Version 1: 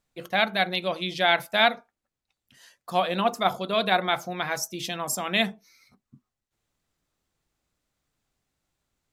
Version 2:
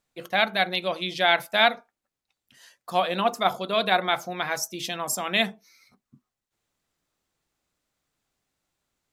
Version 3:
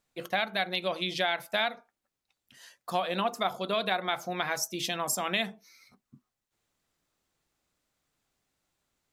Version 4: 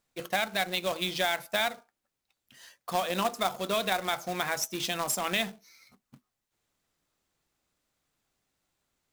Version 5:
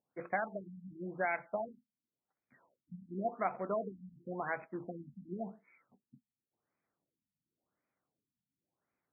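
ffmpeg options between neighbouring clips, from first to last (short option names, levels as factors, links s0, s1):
-af "lowshelf=f=160:g=-7.5,volume=1.12"
-af "acompressor=threshold=0.0501:ratio=4"
-af "acrusher=bits=2:mode=log:mix=0:aa=0.000001"
-af "highpass=130,lowpass=5200,afftfilt=real='re*lt(b*sr/1024,250*pow(2600/250,0.5+0.5*sin(2*PI*0.92*pts/sr)))':imag='im*lt(b*sr/1024,250*pow(2600/250,0.5+0.5*sin(2*PI*0.92*pts/sr)))':win_size=1024:overlap=0.75,volume=0.596"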